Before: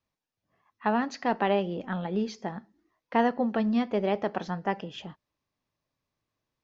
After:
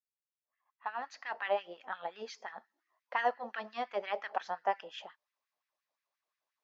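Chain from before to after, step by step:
fade in at the beginning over 2.10 s
auto-filter high-pass sine 5.7 Hz 590–1,900 Hz
level −6 dB

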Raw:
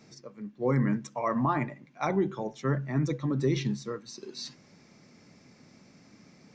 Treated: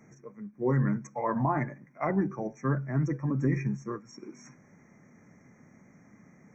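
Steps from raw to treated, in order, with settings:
formants moved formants −2 semitones
brick-wall band-stop 2,500–5,500 Hz

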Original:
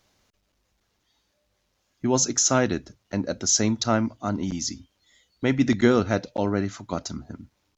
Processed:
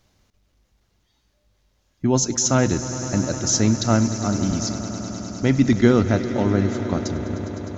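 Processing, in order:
low-shelf EQ 200 Hz +10.5 dB
on a send: echo that builds up and dies away 102 ms, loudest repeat 5, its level −16 dB

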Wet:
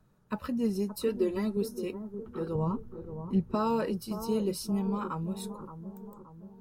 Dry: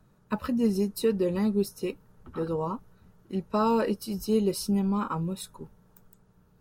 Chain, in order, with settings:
0:01.08–0:01.57: comb filter 3 ms, depth 76%
0:02.55–0:03.55: bass and treble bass +13 dB, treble −3 dB
bucket-brigade delay 573 ms, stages 4,096, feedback 52%, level −10 dB
level −4.5 dB

